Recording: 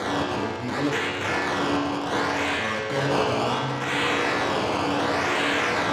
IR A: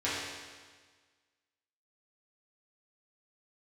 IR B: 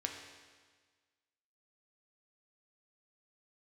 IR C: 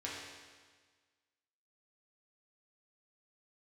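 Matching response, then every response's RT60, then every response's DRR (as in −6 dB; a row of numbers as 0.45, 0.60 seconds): C; 1.5, 1.5, 1.5 seconds; −11.0, 1.5, −6.5 decibels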